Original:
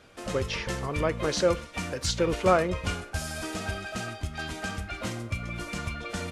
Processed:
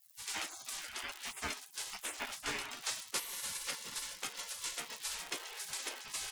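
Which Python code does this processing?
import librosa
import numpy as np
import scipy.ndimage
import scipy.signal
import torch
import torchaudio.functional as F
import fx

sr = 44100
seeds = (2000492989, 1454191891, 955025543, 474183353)

y = fx.rider(x, sr, range_db=3, speed_s=0.5)
y = fx.dmg_crackle(y, sr, seeds[0], per_s=210.0, level_db=-37.0)
y = fx.spec_gate(y, sr, threshold_db=-25, keep='weak')
y = F.gain(torch.from_numpy(y), 3.5).numpy()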